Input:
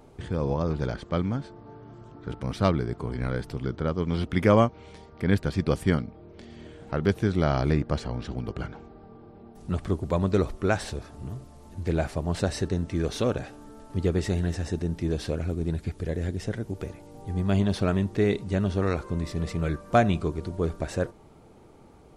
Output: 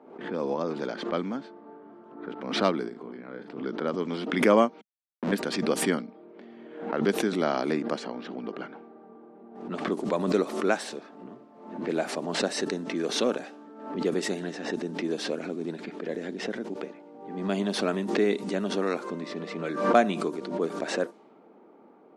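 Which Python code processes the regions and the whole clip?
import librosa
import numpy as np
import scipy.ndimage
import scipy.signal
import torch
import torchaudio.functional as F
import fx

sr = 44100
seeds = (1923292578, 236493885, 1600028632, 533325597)

y = fx.chain(x, sr, fx.low_shelf(hz=130.0, db=8.0),
    fx.level_steps(step_db=17),
    fx.doubler(ms=38.0, db=-8), at=(2.89, 3.63))
y = fx.chain(y, sr, fx.schmitt(flips_db=-25.5),
    fx.tilt_eq(slope=-3.5),
    fx.band_squash(depth_pct=40), at=(4.81, 5.32))
y = scipy.signal.sosfilt(scipy.signal.butter(6, 210.0, 'highpass', fs=sr, output='sos'), y)
y = fx.env_lowpass(y, sr, base_hz=1500.0, full_db=-24.5)
y = fx.pre_swell(y, sr, db_per_s=76.0)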